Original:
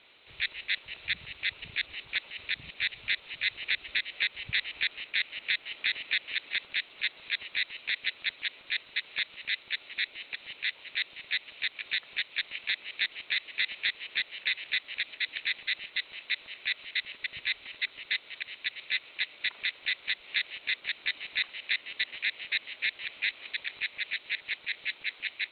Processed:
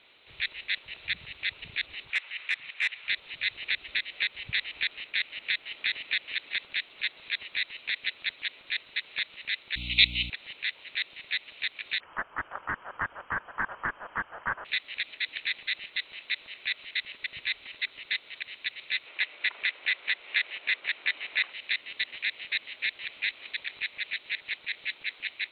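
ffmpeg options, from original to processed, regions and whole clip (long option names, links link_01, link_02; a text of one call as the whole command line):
ffmpeg -i in.wav -filter_complex "[0:a]asettb=1/sr,asplit=3[link_01][link_02][link_03];[link_01]atrim=end=2.104[link_04];[link_02]atrim=start=2.1:end=3.08,asetpts=PTS-STARTPTS,afade=type=in:duration=0.004:curve=qsin,afade=type=out:start_time=0.976:duration=0.004:curve=qsin,acontrast=54,asoftclip=type=hard:threshold=-20dB,bandpass=frequency=1900:width_type=q:width=1.3[link_05];[link_03]atrim=start=3.076[link_06];[link_04][link_05]acrossfade=duration=0.004:curve1=hsin:curve2=qsin[link_07];[link_07][link_06]acrossfade=duration=0.004:curve1=qsin:curve2=hsin,asettb=1/sr,asplit=3[link_08][link_09][link_10];[link_08]atrim=end=9.764[link_11];[link_09]atrim=start=9.76:end=10.3,asetpts=PTS-STARTPTS,afade=type=in:duration=0.004:curve=qsin,afade=type=out:start_time=0.536:duration=0.004:curve=qsin,highshelf=frequency=1900:width_type=q:width=1.5:gain=12,aeval=exprs='val(0)+0.0126*(sin(2*PI*60*n/s)+sin(2*PI*2*60*n/s)/2+sin(2*PI*3*60*n/s)/3+sin(2*PI*4*60*n/s)/4+sin(2*PI*5*60*n/s)/5)':channel_layout=same,asuperstop=centerf=1700:order=4:qfactor=3[link_12];[link_10]atrim=start=10.296[link_13];[link_11][link_12]acrossfade=duration=0.004:curve1=hsin:curve2=qsin[link_14];[link_14][link_13]acrossfade=duration=0.004:curve1=qsin:curve2=hsin,asettb=1/sr,asplit=3[link_15][link_16][link_17];[link_15]atrim=end=12.004[link_18];[link_16]atrim=start=12:end=14.65,asetpts=PTS-STARTPTS,afade=type=in:duration=0.004:curve=qsin,afade=type=out:start_time=2.646:duration=0.004:curve=qsin,highpass=460,aphaser=in_gain=1:out_gain=1:delay=4.8:decay=0.24:speed=1.8:type=triangular,lowpass=frequency=3100:width_type=q:width=0.5098,lowpass=frequency=3100:width_type=q:width=0.6013,lowpass=frequency=3100:width_type=q:width=0.9,lowpass=frequency=3100:width_type=q:width=2.563,afreqshift=-3600[link_19];[link_17]atrim=start=14.646[link_20];[link_18][link_19]acrossfade=duration=0.004:curve1=hsin:curve2=qsin[link_21];[link_21][link_20]acrossfade=duration=0.004:curve1=qsin:curve2=hsin,asettb=1/sr,asplit=3[link_22][link_23][link_24];[link_22]atrim=end=19.064[link_25];[link_23]atrim=start=19.06:end=21.53,asetpts=PTS-STARTPTS,afade=type=in:duration=0.004:curve=qsin,afade=type=out:start_time=2.466:duration=0.004:curve=qsin,bass=frequency=250:gain=-13,treble=frequency=4000:gain=-14,acontrast=30[link_26];[link_24]atrim=start=21.526[link_27];[link_25][link_26]acrossfade=duration=0.004:curve1=hsin:curve2=qsin[link_28];[link_28][link_27]acrossfade=duration=0.004:curve1=qsin:curve2=hsin" out.wav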